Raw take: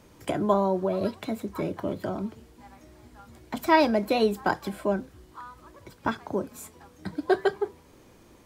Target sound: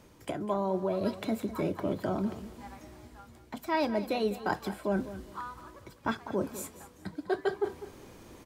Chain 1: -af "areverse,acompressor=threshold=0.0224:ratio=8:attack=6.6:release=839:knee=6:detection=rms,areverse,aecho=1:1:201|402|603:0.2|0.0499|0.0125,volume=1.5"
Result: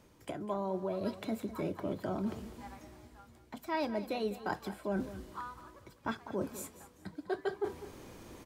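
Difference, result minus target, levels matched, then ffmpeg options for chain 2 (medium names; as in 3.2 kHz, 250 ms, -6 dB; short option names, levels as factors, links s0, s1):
compression: peak gain reduction +5.5 dB
-af "areverse,acompressor=threshold=0.0447:ratio=8:attack=6.6:release=839:knee=6:detection=rms,areverse,aecho=1:1:201|402|603:0.2|0.0499|0.0125,volume=1.5"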